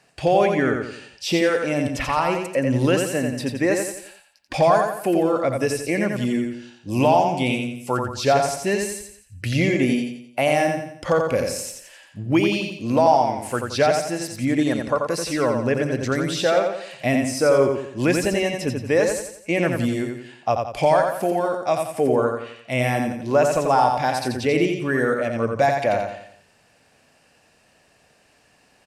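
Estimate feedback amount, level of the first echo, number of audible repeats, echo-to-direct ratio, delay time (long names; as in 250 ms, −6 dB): 42%, −4.5 dB, 5, −3.5 dB, 87 ms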